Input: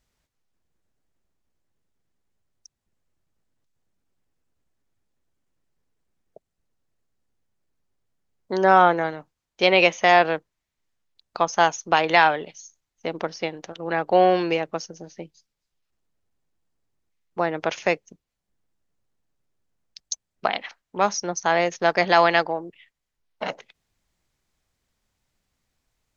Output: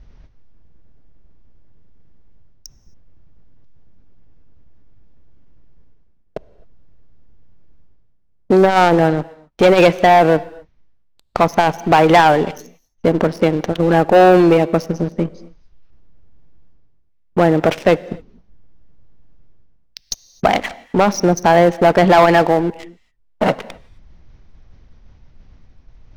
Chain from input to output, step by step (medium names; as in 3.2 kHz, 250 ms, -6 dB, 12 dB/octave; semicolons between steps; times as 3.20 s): elliptic low-pass 6 kHz; tilt EQ -3.5 dB/octave; in parallel at +2 dB: compression, threshold -28 dBFS, peak gain reduction 18 dB; on the sum: waveshaping leveller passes 3; reverse; upward compressor, threshold -25 dBFS; reverse; reverberation, pre-delay 3 ms, DRR 20 dB; transformer saturation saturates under 200 Hz; trim -1 dB